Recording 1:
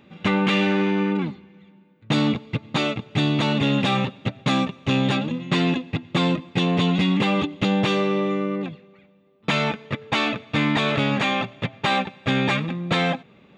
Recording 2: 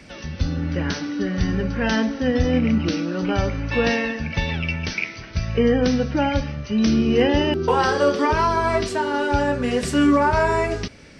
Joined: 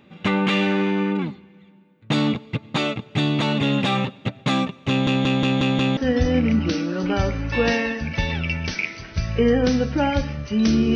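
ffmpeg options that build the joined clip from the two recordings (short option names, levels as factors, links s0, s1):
-filter_complex "[0:a]apad=whole_dur=10.95,atrim=end=10.95,asplit=6[s0][s1][s2][s3][s4][s5];[s0]atrim=end=5.072[s6];[s1]atrim=start=4.888:end=5.072[s7];[s2]atrim=start=4.888:end=5.072[s8];[s3]atrim=start=4.888:end=5.072[s9];[s4]atrim=start=4.888:end=5.072[s10];[s5]atrim=start=4.888:end=5.072[s11];[1:a]atrim=start=2.158:end=7.14[s12];[s6][s7]acrossfade=d=0.004:c1=hsin:c2=hsin[s13];[s13][s8]acrossfade=d=0.004:c1=hsin:c2=hsin[s14];[s14][s9]acrossfade=d=0.004:c1=hsin:c2=hsin[s15];[s15][s10]acrossfade=d=0.004:c1=hsin:c2=hsin[s16];[s16][s11]acrossfade=d=0.004:c1=hsin:c2=hsin[s17];[s17][s12]acrossfade=d=0.004:c1=hsin:c2=hsin"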